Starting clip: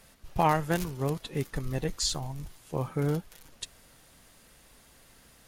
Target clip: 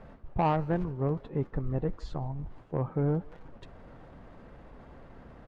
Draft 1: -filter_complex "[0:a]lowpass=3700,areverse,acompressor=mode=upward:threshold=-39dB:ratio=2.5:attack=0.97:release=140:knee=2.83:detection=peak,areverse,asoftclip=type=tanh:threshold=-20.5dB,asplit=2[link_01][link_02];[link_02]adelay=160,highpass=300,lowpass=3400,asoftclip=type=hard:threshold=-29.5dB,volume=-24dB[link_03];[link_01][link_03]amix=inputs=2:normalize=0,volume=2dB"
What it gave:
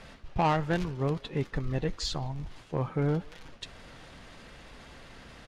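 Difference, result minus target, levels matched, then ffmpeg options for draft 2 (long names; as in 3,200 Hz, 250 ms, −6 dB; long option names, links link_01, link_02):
4,000 Hz band +15.5 dB
-filter_complex "[0:a]lowpass=1000,areverse,acompressor=mode=upward:threshold=-39dB:ratio=2.5:attack=0.97:release=140:knee=2.83:detection=peak,areverse,asoftclip=type=tanh:threshold=-20.5dB,asplit=2[link_01][link_02];[link_02]adelay=160,highpass=300,lowpass=3400,asoftclip=type=hard:threshold=-29.5dB,volume=-24dB[link_03];[link_01][link_03]amix=inputs=2:normalize=0,volume=2dB"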